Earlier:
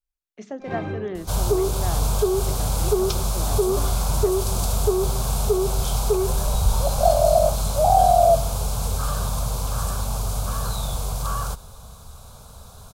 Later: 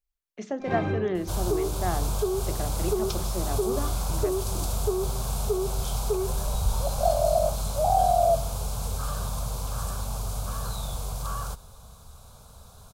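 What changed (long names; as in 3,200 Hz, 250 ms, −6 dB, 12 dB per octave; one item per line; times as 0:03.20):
second sound −6.5 dB
reverb: on, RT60 0.60 s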